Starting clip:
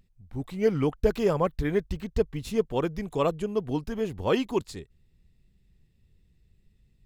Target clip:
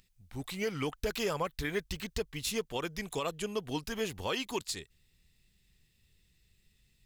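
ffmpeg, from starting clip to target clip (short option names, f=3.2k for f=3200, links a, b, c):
-af "acontrast=81,tiltshelf=f=1.2k:g=-9,alimiter=limit=-17dB:level=0:latency=1:release=260,volume=-5.5dB"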